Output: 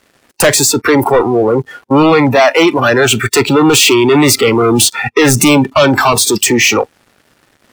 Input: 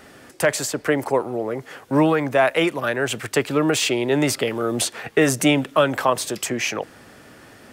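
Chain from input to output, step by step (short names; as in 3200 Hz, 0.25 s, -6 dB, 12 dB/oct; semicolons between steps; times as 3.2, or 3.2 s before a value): one-sided fold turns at -10 dBFS; sample leveller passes 5; spectral noise reduction 20 dB; gain +1.5 dB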